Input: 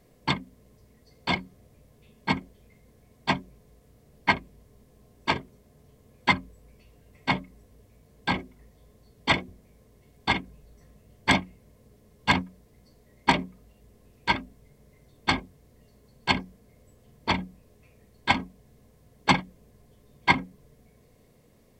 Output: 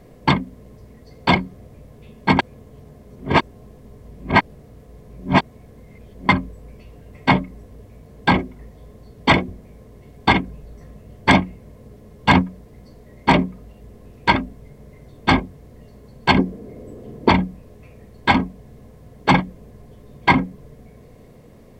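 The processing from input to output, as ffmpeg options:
-filter_complex "[0:a]asettb=1/sr,asplit=3[a][b][c];[a]atrim=end=16.384[d];[b]atrim=start=16.38:end=17.29,asetpts=PTS-STARTPTS,afade=t=in:d=0.004:c=qsin,afade=t=out:st=0.906:d=0.004:c=qsin,equalizer=f=340:t=o:w=1.6:g=13[e];[c]atrim=start=17.286[f];[d][e]acrossfade=d=0.004:c1=hsin:c2=qsin[g];[g][f]acrossfade=d=0.004:c1=qsin:c2=hsin,asplit=3[h][i][j];[h]atrim=end=2.392[k];[i]atrim=start=2.388:end=6.292,asetpts=PTS-STARTPTS,areverse[l];[j]atrim=start=6.288[m];[k][l]acrossfade=d=0.004:c1=hsin:c2=hsin[n];[n][m]acrossfade=d=0.004:c1=hsin:c2=hsin,highshelf=f=2.5k:g=-10,alimiter=level_in=15dB:limit=-1dB:release=50:level=0:latency=1,volume=-1dB"

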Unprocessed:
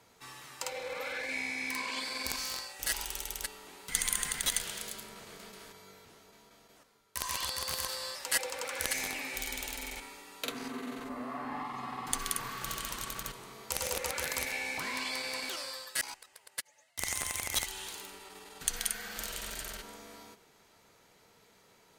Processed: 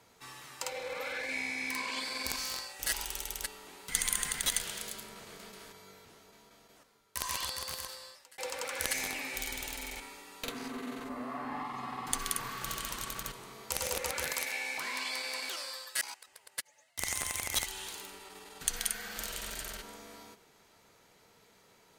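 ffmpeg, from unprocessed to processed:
-filter_complex "[0:a]asettb=1/sr,asplit=3[a][b][c];[a]atrim=end=9.524[d];[b]atrim=start=9.52:end=10.84,asetpts=PTS-STARTPTS,afade=t=in:d=0.004:c=qsin,afade=t=out:st=1.316:d=0.004:c=qsin,aeval=exprs='clip(val(0),-1,0.015)':c=same[e];[c]atrim=start=10.836[f];[d][e]acrossfade=d=0.004:c1=hsin:c2=qsin[g];[g][f]acrossfade=d=0.004:c1=qsin:c2=hsin,asettb=1/sr,asplit=3[h][i][j];[h]atrim=end=14.334[k];[i]atrim=start=14.33:end=16.27,asetpts=PTS-STARTPTS,afade=t=in:d=0.004:c=qsin,afade=t=out:st=1.936:d=0.004:c=qsin,highpass=f=520:p=1[l];[j]atrim=start=16.266[m];[k][l]acrossfade=d=0.004:c1=hsin:c2=qsin[n];[n][m]acrossfade=d=0.004:c1=qsin:c2=hsin,asplit=2[o][p];[o]atrim=end=8.38,asetpts=PTS-STARTPTS,afade=t=out:st=7.32:d=1.06[q];[p]atrim=start=8.38,asetpts=PTS-STARTPTS,afade=t=in:d=0.004:c=hsin[r];[q][r]concat=n=2:v=0:a=1"

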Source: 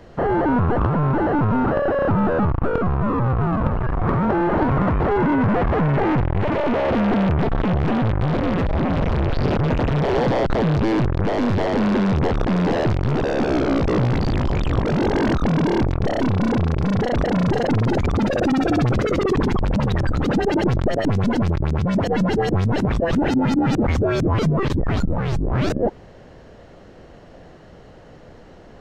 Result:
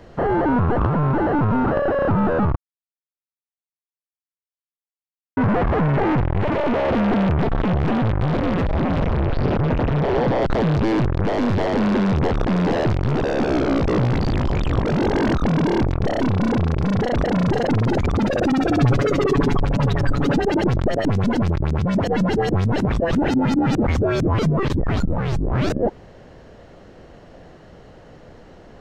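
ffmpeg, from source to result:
-filter_complex "[0:a]asettb=1/sr,asplit=3[a][b][c];[a]atrim=end=9.064[d];[b]atrim=start=9.06:end=10.42,asetpts=PTS-STARTPTS,afade=t=in:d=0.004:c=qsin,afade=t=out:st=1.356:d=0.004:c=qsin,lowpass=f=2.9k:p=1[e];[c]atrim=start=10.416[f];[d][e]acrossfade=d=0.004:c1=hsin:c2=qsin[g];[g][f]acrossfade=d=0.004:c1=qsin:c2=hsin,asettb=1/sr,asplit=3[h][i][j];[h]atrim=end=18.804[k];[i]atrim=start=18.8:end=20.38,asetpts=PTS-STARTPTS,afade=t=in:d=0.004:c=qsin,afade=t=out:st=1.576:d=0.004:c=qsin,aecho=1:1:7.1:0.6,atrim=end_sample=69678[l];[j]atrim=start=20.376[m];[k][l]acrossfade=d=0.004:c1=hsin:c2=qsin[n];[n][m]acrossfade=d=0.004:c1=qsin:c2=hsin,asplit=3[o][p][q];[o]atrim=end=2.56,asetpts=PTS-STARTPTS,afade=t=out:st=2.556:d=0.004:c=hsin[r];[p]atrim=start=2.56:end=5.37,asetpts=PTS-STARTPTS,volume=0[s];[q]atrim=start=5.37,asetpts=PTS-STARTPTS,afade=t=in:d=0.004:c=hsin[t];[r][s][t]concat=n=3:v=0:a=1"

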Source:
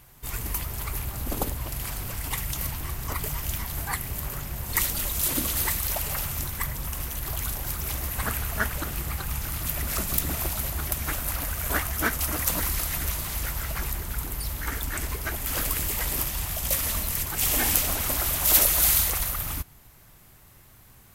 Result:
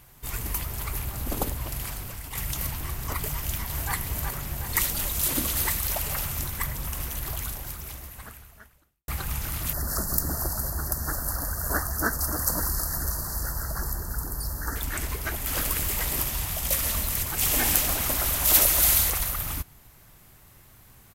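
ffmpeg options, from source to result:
-filter_complex "[0:a]asplit=2[a][b];[b]afade=t=in:st=3.32:d=0.01,afade=t=out:st=3.93:d=0.01,aecho=0:1:370|740|1110|1480|1850|2220|2590|2960:0.530884|0.318531|0.191118|0.114671|0.0688026|0.0412816|0.0247689|0.0148614[c];[a][c]amix=inputs=2:normalize=0,asettb=1/sr,asplit=3[d][e][f];[d]atrim=end=9.734[g];[e]atrim=start=9.73:end=14.76,asetpts=PTS-STARTPTS,afade=t=in:d=0.004:c=qsin,afade=t=out:st=5.026:d=0.004:c=qsin,asuperstop=centerf=2800:order=12:qfactor=1.1[h];[f]atrim=start=14.756[i];[g][h]acrossfade=d=0.004:c1=hsin:c2=qsin[j];[j][i]acrossfade=d=0.004:c1=qsin:c2=hsin,asettb=1/sr,asplit=3[k][l][m];[k]atrim=end=15.344[n];[l]atrim=start=15.34:end=19.1,asetpts=PTS-STARTPTS,afade=t=in:d=0.004:c=qsin,afade=t=out:st=3.756:d=0.004:c=qsin,aecho=1:1:136|272|408|544|680|816:0.266|0.146|0.0805|0.0443|0.0243|0.0134,atrim=end_sample=165816[o];[m]atrim=start=19.096[p];[n][o]acrossfade=d=0.004:c1=hsin:c2=qsin[q];[q][p]acrossfade=d=0.004:c1=qsin:c2=hsin,asplit=3[r][s][t];[r]atrim=end=2.35,asetpts=PTS-STARTPTS,afade=t=out:st=1.76:d=0.59:silence=0.375837[u];[s]atrim=start=2.35:end=9.08,asetpts=PTS-STARTPTS,afade=t=in:d=0.004:c=hsin:silence=0.375837,afade=t=out:st=4.85:d=1.88:c=qua[v];[t]atrim=start=9.08,asetpts=PTS-STARTPTS,afade=t=in:d=0.004:c=hsin[w];[u][v][w]concat=n=3:v=0:a=1"

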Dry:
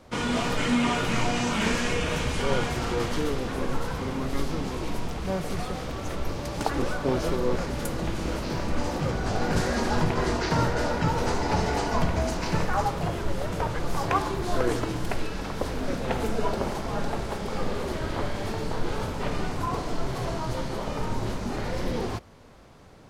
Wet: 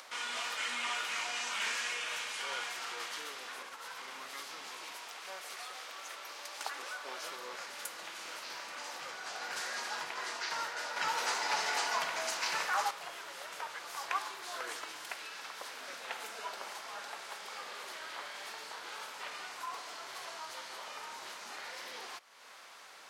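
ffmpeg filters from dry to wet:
-filter_complex "[0:a]asettb=1/sr,asplit=3[a][b][c];[a]atrim=end=3.624[d];[b]atrim=start=3.62:end=4.08,asetpts=PTS-STARTPTS,afade=t=in:d=0.004:c=qsin,afade=t=out:st=0.456:d=0.004:c=qsin,acompressor=threshold=-26dB:ratio=6:attack=3.2:release=140:knee=1:detection=peak[e];[c]atrim=start=4.076[f];[d][e]acrossfade=d=0.004:c1=hsin:c2=qsin[g];[g][f]acrossfade=d=0.004:c1=qsin:c2=hsin,asettb=1/sr,asplit=3[h][i][j];[h]atrim=end=4.934[k];[i]atrim=start=4.93:end=7.22,asetpts=PTS-STARTPTS,afade=t=in:d=0.004:c=qsin,afade=t=out:st=2.286:d=0.004:c=qsin,highpass=260[l];[j]atrim=start=7.216[m];[k][l]acrossfade=d=0.004:c1=hsin:c2=qsin[n];[n][m]acrossfade=d=0.004:c1=qsin:c2=hsin,asettb=1/sr,asplit=3[o][p][q];[o]atrim=end=10.964[r];[p]atrim=start=10.96:end=12.91,asetpts=PTS-STARTPTS,afade=t=in:d=0.004:c=qsin,afade=t=out:st=1.946:d=0.004:c=qsin,acontrast=56[s];[q]atrim=start=12.906[t];[r][s]acrossfade=d=0.004:c1=hsin:c2=qsin[u];[u][t]acrossfade=d=0.004:c1=qsin:c2=hsin,highpass=1.3k,acompressor=mode=upward:threshold=-37dB:ratio=2.5,volume=-4.5dB"

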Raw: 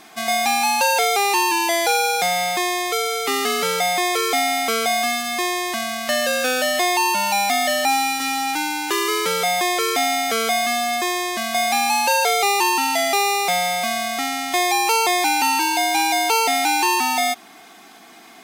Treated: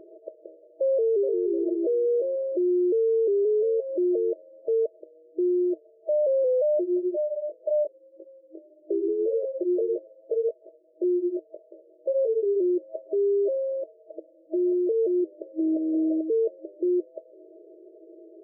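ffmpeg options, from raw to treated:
-filter_complex "[0:a]asplit=2[a][b];[b]afade=t=in:st=0.93:d=0.01,afade=t=out:st=1.45:d=0.01,aecho=0:1:300|600|900|1200:0.707946|0.212384|0.0637151|0.0191145[c];[a][c]amix=inputs=2:normalize=0,asplit=3[d][e][f];[d]afade=t=out:st=2.68:d=0.02[g];[e]aecho=1:1:2.5:0.65,afade=t=in:st=2.68:d=0.02,afade=t=out:st=3.94:d=0.02[h];[f]afade=t=in:st=3.94:d=0.02[i];[g][h][i]amix=inputs=3:normalize=0,asplit=3[j][k][l];[j]afade=t=out:st=6.81:d=0.02[m];[k]flanger=delay=16.5:depth=5.5:speed=1.8,afade=t=in:st=6.81:d=0.02,afade=t=out:st=12.55:d=0.02[n];[l]afade=t=in:st=12.55:d=0.02[o];[m][n][o]amix=inputs=3:normalize=0,asettb=1/sr,asplit=3[p][q][r];[p]atrim=end=14.104[s];[q]atrim=start=14.1:end=14.92,asetpts=PTS-STARTPTS,afade=t=in:d=0.004:c=qsin,afade=t=out:st=0.816:d=0.004:c=qsin,aecho=1:1:6.5:0.81,atrim=end_sample=36162[t];[r]atrim=start=14.916[u];[s][t]acrossfade=d=0.004:c1=hsin:c2=qsin[v];[v][u]acrossfade=d=0.004:c1=qsin:c2=hsin,asettb=1/sr,asplit=3[w][x][y];[w]atrim=end=15.604[z];[x]atrim=start=15.6:end=16.21,asetpts=PTS-STARTPTS,afade=t=in:d=0.004:c=qsin,afade=t=out:st=0.606:d=0.004:c=qsin,acontrast=76[aa];[y]atrim=start=16.206[ab];[z][aa]acrossfade=d=0.004:c1=hsin:c2=qsin[ac];[ac][ab]acrossfade=d=0.004:c1=qsin:c2=hsin,afftfilt=real='re*between(b*sr/4096,320,650)':imag='im*between(b*sr/4096,320,650)':win_size=4096:overlap=0.75,alimiter=level_in=3dB:limit=-24dB:level=0:latency=1:release=149,volume=-3dB,volume=8dB"

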